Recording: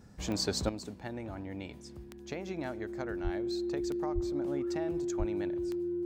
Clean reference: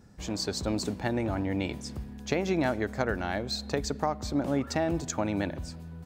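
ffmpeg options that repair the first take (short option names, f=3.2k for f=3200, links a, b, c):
-filter_complex "[0:a]adeclick=t=4,bandreject=f=350:w=30,asplit=3[a][b][c];[a]afade=t=out:st=3.23:d=0.02[d];[b]highpass=f=140:w=0.5412,highpass=f=140:w=1.3066,afade=t=in:st=3.23:d=0.02,afade=t=out:st=3.35:d=0.02[e];[c]afade=t=in:st=3.35:d=0.02[f];[d][e][f]amix=inputs=3:normalize=0,asplit=3[g][h][i];[g]afade=t=out:st=4.14:d=0.02[j];[h]highpass=f=140:w=0.5412,highpass=f=140:w=1.3066,afade=t=in:st=4.14:d=0.02,afade=t=out:st=4.26:d=0.02[k];[i]afade=t=in:st=4.26:d=0.02[l];[j][k][l]amix=inputs=3:normalize=0,asplit=3[m][n][o];[m]afade=t=out:st=5.18:d=0.02[p];[n]highpass=f=140:w=0.5412,highpass=f=140:w=1.3066,afade=t=in:st=5.18:d=0.02,afade=t=out:st=5.3:d=0.02[q];[o]afade=t=in:st=5.3:d=0.02[r];[p][q][r]amix=inputs=3:normalize=0,asetnsamples=n=441:p=0,asendcmd='0.69 volume volume 11dB',volume=0dB"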